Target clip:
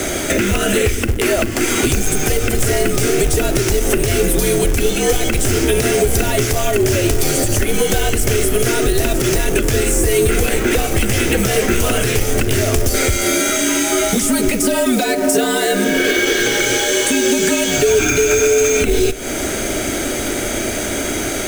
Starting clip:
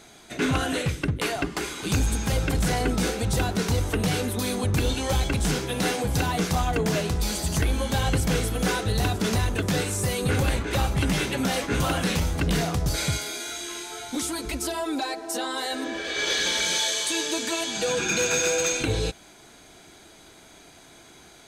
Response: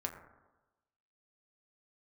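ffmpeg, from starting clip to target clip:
-filter_complex "[0:a]acrossover=split=110|2200[a][b][c];[a]acompressor=threshold=-38dB:ratio=4[d];[b]acompressor=threshold=-34dB:ratio=4[e];[c]acompressor=threshold=-36dB:ratio=4[f];[d][e][f]amix=inputs=3:normalize=0,asplit=2[g][h];[1:a]atrim=start_sample=2205,asetrate=38808,aresample=44100,adelay=39[i];[h][i]afir=irnorm=-1:irlink=0,volume=-19dB[j];[g][j]amix=inputs=2:normalize=0,acompressor=threshold=-43dB:ratio=6,afreqshift=-62,acrusher=bits=3:mode=log:mix=0:aa=0.000001,equalizer=f=160:t=o:w=0.67:g=-8,equalizer=f=400:t=o:w=0.67:g=6,equalizer=f=1k:t=o:w=0.67:g=-10,equalizer=f=4k:t=o:w=0.67:g=-10,alimiter=level_in=34dB:limit=-1dB:release=50:level=0:latency=1,volume=-3dB"

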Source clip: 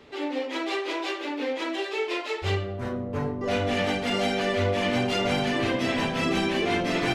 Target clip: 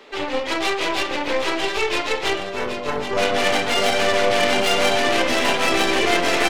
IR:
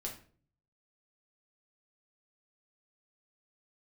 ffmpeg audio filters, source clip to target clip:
-af "highpass=420,atempo=1.1,aeval=exprs='0.188*(cos(1*acos(clip(val(0)/0.188,-1,1)))-cos(1*PI/2))+0.0596*(cos(2*acos(clip(val(0)/0.188,-1,1)))-cos(2*PI/2))+0.0266*(cos(8*acos(clip(val(0)/0.188,-1,1)))-cos(8*PI/2))':c=same,aecho=1:1:777:0.376,volume=8dB"

